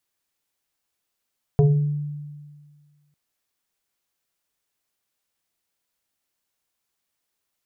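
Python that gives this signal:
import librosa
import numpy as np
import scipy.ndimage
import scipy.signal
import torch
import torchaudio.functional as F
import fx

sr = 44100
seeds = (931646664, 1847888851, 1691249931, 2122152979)

y = fx.fm2(sr, length_s=1.55, level_db=-11.0, carrier_hz=147.0, ratio=1.89, index=1.1, index_s=0.67, decay_s=1.75, shape='exponential')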